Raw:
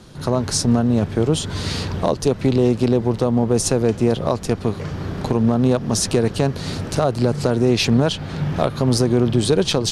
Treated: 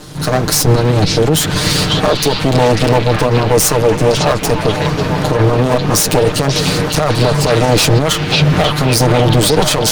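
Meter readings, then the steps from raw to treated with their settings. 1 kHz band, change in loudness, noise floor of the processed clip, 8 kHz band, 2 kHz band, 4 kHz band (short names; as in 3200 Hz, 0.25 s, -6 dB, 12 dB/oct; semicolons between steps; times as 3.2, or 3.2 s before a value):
+11.5 dB, +7.0 dB, -19 dBFS, +9.5 dB, +13.0 dB, +11.0 dB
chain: minimum comb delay 6.6 ms; high shelf 6800 Hz +6 dB; delay with a stepping band-pass 0.543 s, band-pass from 3100 Hz, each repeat -0.7 oct, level 0 dB; maximiser +13 dB; gain -1 dB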